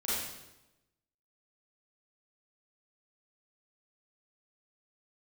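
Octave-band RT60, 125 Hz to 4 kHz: 1.1, 1.1, 1.0, 0.90, 0.85, 0.85 s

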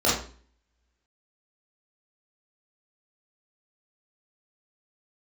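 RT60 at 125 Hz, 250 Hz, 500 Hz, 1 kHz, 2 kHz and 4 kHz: 0.50, 0.55, 0.45, 0.40, 0.40, 0.40 s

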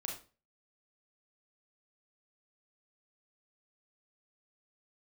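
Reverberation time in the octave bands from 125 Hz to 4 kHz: 0.45, 0.40, 0.35, 0.35, 0.30, 0.30 s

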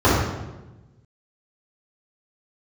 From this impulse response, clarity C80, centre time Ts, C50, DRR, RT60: 3.0 dB, 74 ms, -0.5 dB, -12.0 dB, 1.1 s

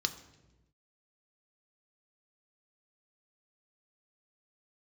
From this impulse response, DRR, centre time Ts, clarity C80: 6.0 dB, 10 ms, 13.5 dB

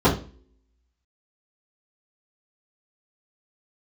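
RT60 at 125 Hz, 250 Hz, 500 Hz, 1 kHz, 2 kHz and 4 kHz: 0.40, 0.60, 0.45, 0.35, 0.35, 0.35 s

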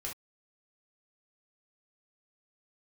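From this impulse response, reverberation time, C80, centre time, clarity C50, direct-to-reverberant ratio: not exponential, 36.5 dB, 23 ms, 7.5 dB, -3.0 dB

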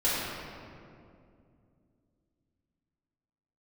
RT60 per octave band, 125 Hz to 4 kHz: 3.4, 3.5, 2.7, 2.1, 1.8, 1.3 s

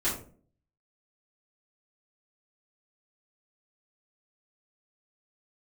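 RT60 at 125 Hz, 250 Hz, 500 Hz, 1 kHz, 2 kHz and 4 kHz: 0.70, 0.65, 0.55, 0.35, 0.30, 0.25 s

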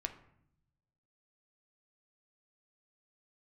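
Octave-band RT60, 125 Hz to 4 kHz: 1.5, 1.1, 0.75, 0.65, 0.65, 0.45 s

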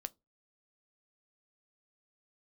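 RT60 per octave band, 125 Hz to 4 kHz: 0.35, 0.25, 0.25, 0.20, 0.15, 0.15 s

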